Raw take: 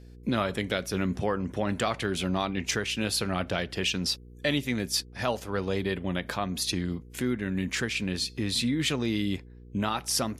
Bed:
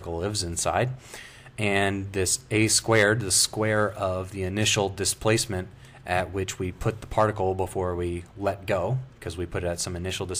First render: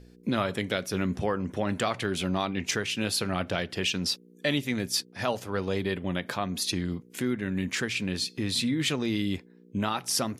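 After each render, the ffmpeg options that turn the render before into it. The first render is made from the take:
-af "bandreject=f=60:t=h:w=4,bandreject=f=120:t=h:w=4"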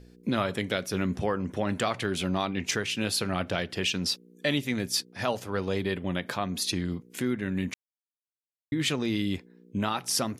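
-filter_complex "[0:a]asplit=3[a][b][c];[a]atrim=end=7.74,asetpts=PTS-STARTPTS,afade=t=out:st=7.736:d=0.004:c=hsin[d];[b]atrim=start=7.74:end=8.72,asetpts=PTS-STARTPTS,volume=0[e];[c]atrim=start=8.72,asetpts=PTS-STARTPTS,afade=t=in:d=0.004:c=hsin[f];[d][e][f]concat=n=3:v=0:a=1"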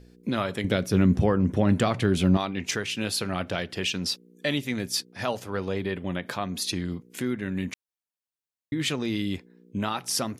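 -filter_complex "[0:a]asettb=1/sr,asplit=3[a][b][c];[a]atrim=end=0.644[d];[b]atrim=start=0.64:end=2.37,asetpts=PTS-STARTPTS,afade=t=in:d=0.004:c=qsin,afade=t=out:st=1.726:d=0.004:c=qsin,lowshelf=f=370:g=12[e];[c]atrim=start=2.366[f];[d][e]acrossfade=d=0.004:c1=hsin:c2=qsin[g];[g][f]acrossfade=d=0.004:c1=qsin:c2=hsin,asettb=1/sr,asplit=3[h][i][j];[h]atrim=end=5.544[k];[i]atrim=start=5.54:end=6.25,asetpts=PTS-STARTPTS,afade=t=in:d=0.004:c=qsin,afade=t=out:st=0.706:d=0.004:c=qsin,acrossover=split=3200[l][m];[m]acompressor=threshold=-49dB:ratio=4:attack=1:release=60[n];[l][n]amix=inputs=2:normalize=0[o];[j]atrim=start=6.246[p];[k][o]acrossfade=d=0.004:c1=hsin:c2=qsin[q];[q][p]acrossfade=d=0.004:c1=qsin:c2=hsin"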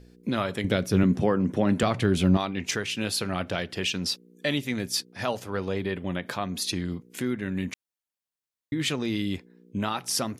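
-filter_complex "[0:a]asettb=1/sr,asplit=3[a][b][c];[a]atrim=end=1.034[d];[b]atrim=start=1.03:end=1.83,asetpts=PTS-STARTPTS,afade=t=in:d=0.004:c=qsin,afade=t=out:st=0.796:d=0.004:c=qsin,highpass=150[e];[c]atrim=start=1.826[f];[d][e]acrossfade=d=0.004:c1=hsin:c2=qsin[g];[g][f]acrossfade=d=0.004:c1=qsin:c2=hsin"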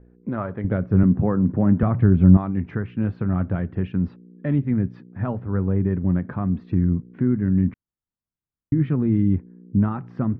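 -af "lowpass=f=1.5k:w=0.5412,lowpass=f=1.5k:w=1.3066,asubboost=boost=6.5:cutoff=230"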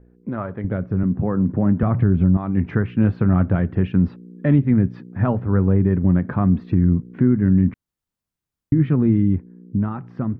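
-af "alimiter=limit=-13.5dB:level=0:latency=1:release=288,dynaudnorm=f=420:g=7:m=6.5dB"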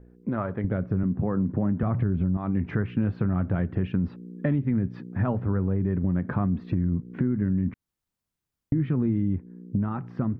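-af "alimiter=limit=-10dB:level=0:latency=1:release=25,acompressor=threshold=-23dB:ratio=3"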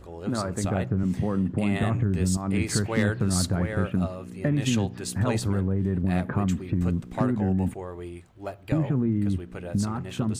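-filter_complex "[1:a]volume=-9dB[a];[0:a][a]amix=inputs=2:normalize=0"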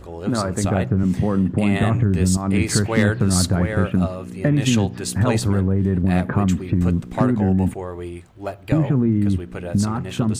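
-af "volume=6.5dB"

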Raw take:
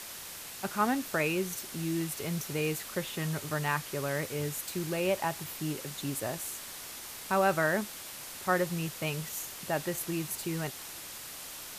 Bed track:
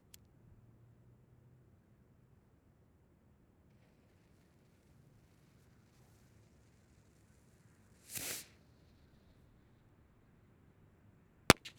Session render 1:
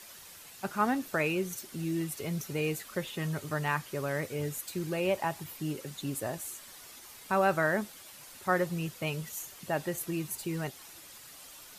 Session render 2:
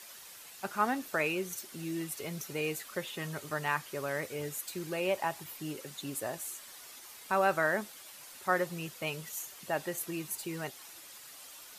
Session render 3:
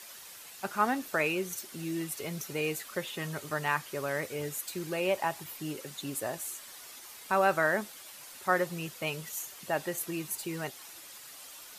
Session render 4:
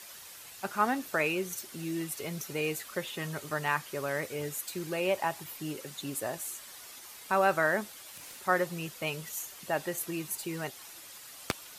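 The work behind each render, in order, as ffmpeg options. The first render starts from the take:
-af "afftdn=nr=9:nf=-44"
-af "lowshelf=f=220:g=-11.5"
-af "volume=2dB"
-filter_complex "[1:a]volume=-10dB[a];[0:a][a]amix=inputs=2:normalize=0"

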